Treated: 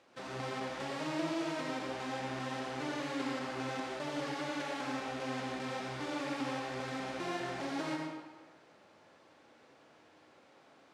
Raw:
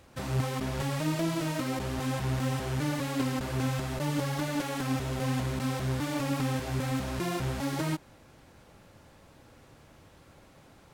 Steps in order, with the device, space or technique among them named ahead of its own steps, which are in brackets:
supermarket ceiling speaker (band-pass filter 310–5,600 Hz; convolution reverb RT60 1.3 s, pre-delay 70 ms, DRR 0.5 dB)
level −5.5 dB

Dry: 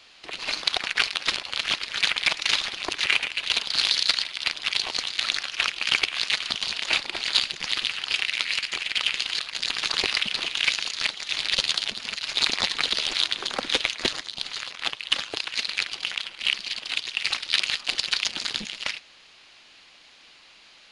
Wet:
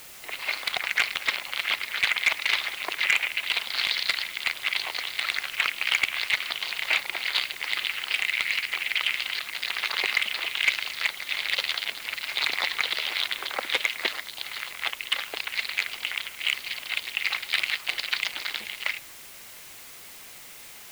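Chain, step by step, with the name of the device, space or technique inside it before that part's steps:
drive-through speaker (band-pass filter 530–3,200 Hz; parametric band 2,100 Hz +8 dB 0.23 octaves; hard clipping −12 dBFS, distortion −16 dB; white noise bed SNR 16 dB)

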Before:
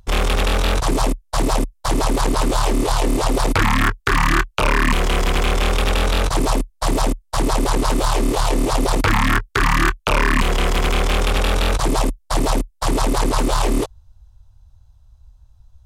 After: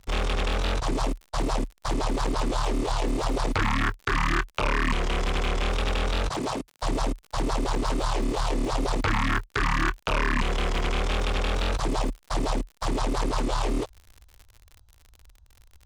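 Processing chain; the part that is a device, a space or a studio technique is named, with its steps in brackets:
lo-fi chain (low-pass filter 7,000 Hz 12 dB per octave; tape wow and flutter; surface crackle 65 per second −29 dBFS)
0:06.29–0:06.83: high-pass filter 120 Hz 12 dB per octave
level −8 dB

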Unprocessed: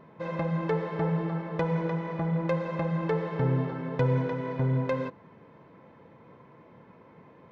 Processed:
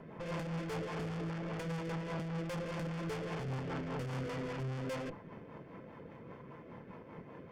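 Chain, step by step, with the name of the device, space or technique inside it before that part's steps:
overdriven rotary cabinet (tube saturation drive 44 dB, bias 0.65; rotating-speaker cabinet horn 5 Hz)
notch filter 3,900 Hz, Q 8.3
level +8 dB

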